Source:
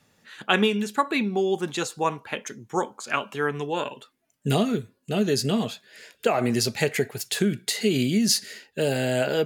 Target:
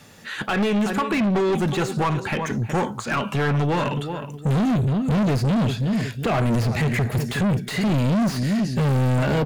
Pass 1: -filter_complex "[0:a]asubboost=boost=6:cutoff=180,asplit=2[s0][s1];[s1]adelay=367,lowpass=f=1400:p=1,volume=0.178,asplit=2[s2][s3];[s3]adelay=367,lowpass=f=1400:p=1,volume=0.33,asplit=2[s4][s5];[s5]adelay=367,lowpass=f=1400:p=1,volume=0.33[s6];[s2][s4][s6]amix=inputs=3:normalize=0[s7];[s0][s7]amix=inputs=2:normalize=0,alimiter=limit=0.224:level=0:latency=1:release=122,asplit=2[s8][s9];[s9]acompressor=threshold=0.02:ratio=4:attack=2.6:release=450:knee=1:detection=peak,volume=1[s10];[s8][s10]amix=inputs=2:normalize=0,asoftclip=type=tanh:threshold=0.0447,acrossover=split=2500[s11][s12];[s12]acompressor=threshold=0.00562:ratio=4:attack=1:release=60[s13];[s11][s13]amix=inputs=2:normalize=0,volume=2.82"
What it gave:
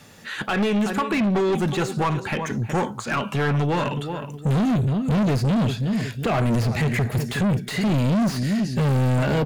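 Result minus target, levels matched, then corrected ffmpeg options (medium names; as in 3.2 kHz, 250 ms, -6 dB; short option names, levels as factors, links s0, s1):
compression: peak gain reduction +5.5 dB
-filter_complex "[0:a]asubboost=boost=6:cutoff=180,asplit=2[s0][s1];[s1]adelay=367,lowpass=f=1400:p=1,volume=0.178,asplit=2[s2][s3];[s3]adelay=367,lowpass=f=1400:p=1,volume=0.33,asplit=2[s4][s5];[s5]adelay=367,lowpass=f=1400:p=1,volume=0.33[s6];[s2][s4][s6]amix=inputs=3:normalize=0[s7];[s0][s7]amix=inputs=2:normalize=0,alimiter=limit=0.224:level=0:latency=1:release=122,asplit=2[s8][s9];[s9]acompressor=threshold=0.0473:ratio=4:attack=2.6:release=450:knee=1:detection=peak,volume=1[s10];[s8][s10]amix=inputs=2:normalize=0,asoftclip=type=tanh:threshold=0.0447,acrossover=split=2500[s11][s12];[s12]acompressor=threshold=0.00562:ratio=4:attack=1:release=60[s13];[s11][s13]amix=inputs=2:normalize=0,volume=2.82"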